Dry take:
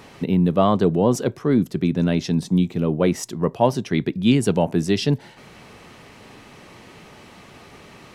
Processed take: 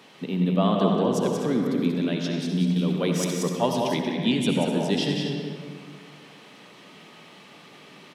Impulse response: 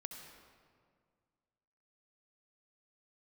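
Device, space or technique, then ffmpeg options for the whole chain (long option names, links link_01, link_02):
stadium PA: -filter_complex "[0:a]highpass=frequency=150:width=0.5412,highpass=frequency=150:width=1.3066,equalizer=frequency=3300:width_type=o:width=0.78:gain=7,aecho=1:1:183.7|250.7:0.562|0.282[link_01];[1:a]atrim=start_sample=2205[link_02];[link_01][link_02]afir=irnorm=-1:irlink=0,asettb=1/sr,asplit=3[link_03][link_04][link_05];[link_03]atrim=end=2.764[link_06];[link_04]atrim=start=2.76:end=3.97,asetpts=PTS-STARTPTS,afade=type=in:duration=0.004:curve=qsin,afade=type=out:start_time=1.206:duration=0.004:curve=qsin,highshelf=frequency=4000:gain=7.5[link_07];[link_05]atrim=start=3.966[link_08];[link_06][link_07]acrossfade=duration=0.004:curve1=hsin:curve2=qsin[link_09];[link_09][link_08]acrossfade=duration=0.004:curve1=qsin:curve2=hsin,volume=-2.5dB"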